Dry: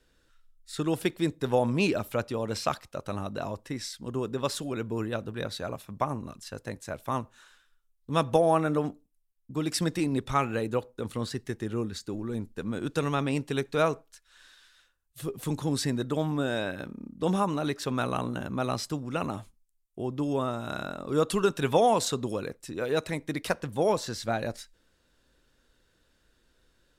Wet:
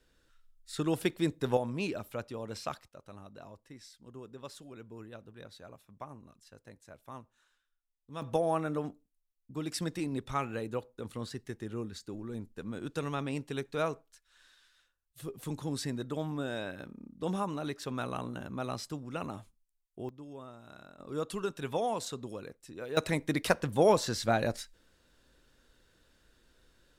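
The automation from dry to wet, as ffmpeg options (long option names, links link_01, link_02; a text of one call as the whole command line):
ffmpeg -i in.wav -af "asetnsamples=nb_out_samples=441:pad=0,asendcmd='1.57 volume volume -9dB;2.88 volume volume -16dB;8.22 volume volume -7dB;20.09 volume volume -18dB;20.99 volume volume -10dB;22.97 volume volume 1.5dB',volume=-2.5dB" out.wav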